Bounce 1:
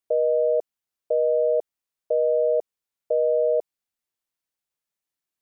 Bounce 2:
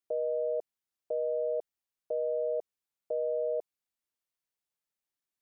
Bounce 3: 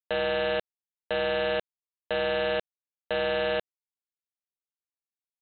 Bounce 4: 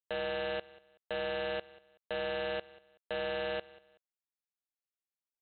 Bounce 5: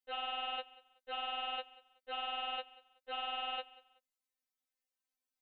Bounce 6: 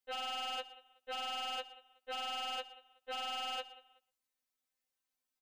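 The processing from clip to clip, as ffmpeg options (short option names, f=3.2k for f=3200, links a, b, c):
-af "alimiter=limit=-20.5dB:level=0:latency=1:release=20,volume=-4.5dB"
-af "equalizer=f=125:t=o:w=1:g=-11,equalizer=f=250:t=o:w=1:g=-4,equalizer=f=500:t=o:w=1:g=-7,aresample=8000,acrusher=bits=5:mix=0:aa=0.000001,aresample=44100,volume=8.5dB"
-af "aecho=1:1:188|376:0.0944|0.0283,volume=-8dB"
-af "afftfilt=real='re*3.46*eq(mod(b,12),0)':imag='im*3.46*eq(mod(b,12),0)':win_size=2048:overlap=0.75,volume=4dB"
-af "asoftclip=type=hard:threshold=-37.5dB,aecho=1:1:120:0.119,volume=2dB"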